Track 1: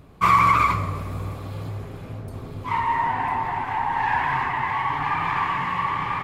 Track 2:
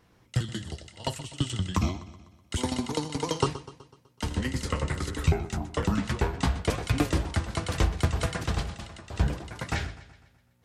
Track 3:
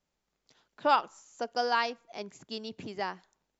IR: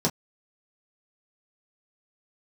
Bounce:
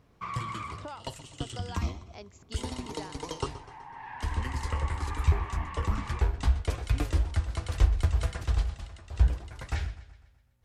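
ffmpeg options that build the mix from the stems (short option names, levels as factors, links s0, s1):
-filter_complex "[0:a]lowpass=f=6400:w=0.5412,lowpass=f=6400:w=1.3066,acompressor=threshold=0.0708:ratio=2.5,volume=0.188[s0];[1:a]asubboost=boost=9.5:cutoff=56,flanger=delay=6.7:depth=9.2:regen=-88:speed=1.8:shape=triangular,volume=0.75[s1];[2:a]acompressor=threshold=0.0158:ratio=6,volume=0.596,asplit=2[s2][s3];[s3]apad=whole_len=274873[s4];[s0][s4]sidechaincompress=threshold=0.002:ratio=8:attack=35:release=1250[s5];[s5][s1][s2]amix=inputs=3:normalize=0"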